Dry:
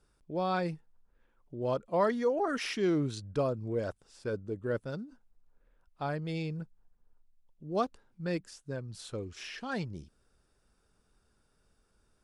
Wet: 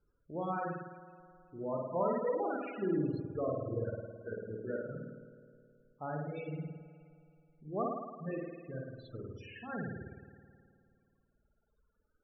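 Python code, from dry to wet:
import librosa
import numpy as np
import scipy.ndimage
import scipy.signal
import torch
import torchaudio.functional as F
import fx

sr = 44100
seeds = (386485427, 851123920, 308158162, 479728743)

y = fx.rev_spring(x, sr, rt60_s=2.7, pass_ms=(53,), chirp_ms=55, drr_db=-5.0)
y = fx.spec_topn(y, sr, count=32)
y = fx.dereverb_blind(y, sr, rt60_s=2.0)
y = y * 10.0 ** (-6.5 / 20.0)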